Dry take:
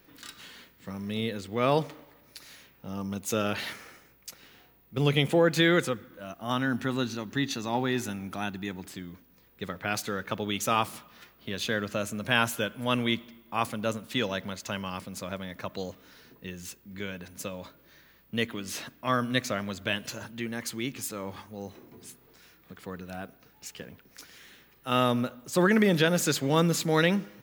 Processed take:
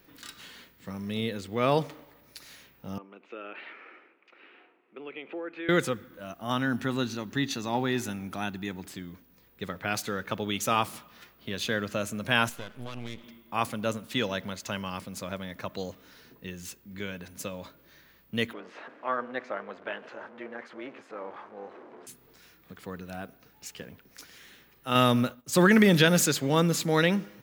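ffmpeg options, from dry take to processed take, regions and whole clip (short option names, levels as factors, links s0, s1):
-filter_complex "[0:a]asettb=1/sr,asplit=3[s0][s1][s2];[s0]atrim=end=2.984[s3];[s1]atrim=start=2.98:end=5.69,asetpts=PTS-STARTPTS,afade=t=in:d=0.004:c=qsin,afade=t=out:st=2.706:d=0.004:c=qsin,acompressor=threshold=0.00398:ratio=2:attack=3.2:release=140:knee=1:detection=peak,highpass=f=290:w=0.5412,highpass=f=290:w=1.3066,equalizer=f=350:t=q:w=4:g=6,equalizer=f=1300:t=q:w=4:g=4,equalizer=f=2500:t=q:w=4:g=7,lowpass=f=2700:w=0.5412,lowpass=f=2700:w=1.3066[s4];[s2]atrim=start=5.686[s5];[s3][s4]acrossfade=d=0.004:c1=hsin:c2=qsin[s6];[s6][s5]acrossfade=d=0.004:c1=qsin:c2=hsin,asettb=1/sr,asplit=3[s7][s8][s9];[s7]atrim=end=12.494[s10];[s8]atrim=start=12.49:end=13.24,asetpts=PTS-STARTPTS,afade=t=in:d=0.004:c=qsin,afade=t=out:st=0.746:d=0.004:c=qsin,highshelf=f=7700:g=-8.5,acompressor=threshold=0.0316:ratio=6:attack=3.2:release=140:knee=1:detection=peak,aeval=exprs='max(val(0),0)':c=same[s11];[s9]atrim=start=13.236[s12];[s10][s11]acrossfade=d=0.004:c1=hsin:c2=qsin[s13];[s13][s12]acrossfade=d=0.004:c1=qsin:c2=hsin,asettb=1/sr,asplit=3[s14][s15][s16];[s14]atrim=end=18.534[s17];[s15]atrim=start=18.53:end=22.07,asetpts=PTS-STARTPTS,afade=t=in:d=0.004:c=qsin,afade=t=out:st=3.536:d=0.004:c=qsin,aeval=exprs='val(0)+0.5*0.0133*sgn(val(0))':c=same,tremolo=f=260:d=0.621,asuperpass=centerf=810:order=4:qfactor=0.58[s18];[s16]atrim=start=22.066[s19];[s17][s18]acrossfade=d=0.004:c1=hsin:c2=qsin[s20];[s20][s19]acrossfade=d=0.004:c1=qsin:c2=hsin,asettb=1/sr,asplit=3[s21][s22][s23];[s21]atrim=end=24.954[s24];[s22]atrim=start=24.95:end=26.26,asetpts=PTS-STARTPTS,afade=t=in:d=0.004:c=qsin,afade=t=out:st=1.306:d=0.004:c=qsin,agate=range=0.0224:threshold=0.00891:ratio=3:release=100:detection=peak,equalizer=f=570:w=0.49:g=-4,acontrast=34[s25];[s23]atrim=start=26.256[s26];[s24][s25]acrossfade=d=0.004:c1=hsin:c2=qsin[s27];[s27][s26]acrossfade=d=0.004:c1=qsin:c2=hsin"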